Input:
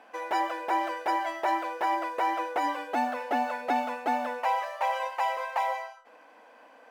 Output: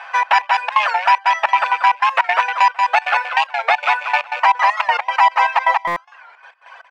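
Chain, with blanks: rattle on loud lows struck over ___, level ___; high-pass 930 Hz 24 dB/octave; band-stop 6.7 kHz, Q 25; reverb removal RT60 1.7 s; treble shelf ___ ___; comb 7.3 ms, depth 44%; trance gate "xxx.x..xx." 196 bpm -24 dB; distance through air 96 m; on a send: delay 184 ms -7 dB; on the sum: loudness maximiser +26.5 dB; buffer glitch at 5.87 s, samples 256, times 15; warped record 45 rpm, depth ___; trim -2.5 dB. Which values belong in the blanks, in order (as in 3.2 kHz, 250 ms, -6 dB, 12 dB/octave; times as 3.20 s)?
-45 dBFS, -27 dBFS, 5.5 kHz, -4.5 dB, 160 cents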